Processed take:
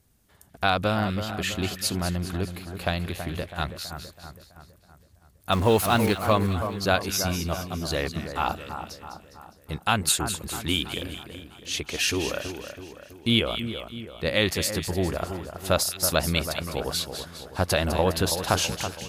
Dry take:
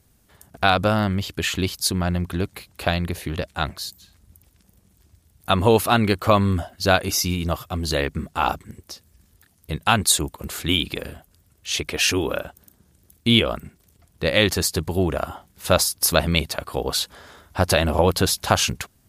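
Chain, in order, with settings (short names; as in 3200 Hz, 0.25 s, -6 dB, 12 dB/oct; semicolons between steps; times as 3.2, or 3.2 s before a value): 5.52–6.13 zero-crossing step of -24.5 dBFS; split-band echo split 1800 Hz, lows 0.327 s, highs 0.204 s, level -9 dB; gain -5 dB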